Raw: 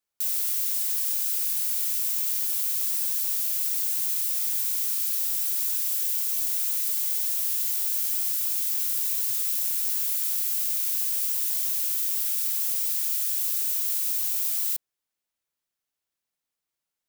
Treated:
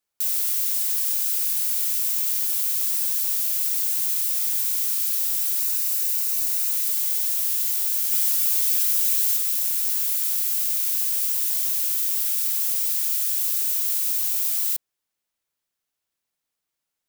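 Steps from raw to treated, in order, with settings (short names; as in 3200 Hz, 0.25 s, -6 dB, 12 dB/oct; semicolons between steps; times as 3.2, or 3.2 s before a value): 5.6–6.73 notch 3300 Hz, Q 10; 8.11–9.37 comb 6.3 ms, depth 93%; gain +3 dB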